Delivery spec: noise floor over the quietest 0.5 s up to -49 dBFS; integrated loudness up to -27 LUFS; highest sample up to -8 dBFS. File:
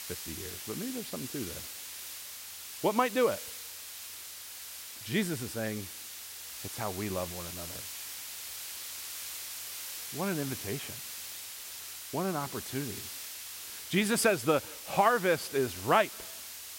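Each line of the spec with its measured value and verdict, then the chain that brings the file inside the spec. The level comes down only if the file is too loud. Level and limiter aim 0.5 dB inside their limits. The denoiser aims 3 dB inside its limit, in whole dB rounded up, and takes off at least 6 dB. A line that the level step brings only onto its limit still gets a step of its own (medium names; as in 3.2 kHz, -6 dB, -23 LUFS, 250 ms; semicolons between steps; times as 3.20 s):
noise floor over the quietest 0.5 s -45 dBFS: fail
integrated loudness -33.5 LUFS: pass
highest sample -11.0 dBFS: pass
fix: noise reduction 7 dB, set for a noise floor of -45 dBFS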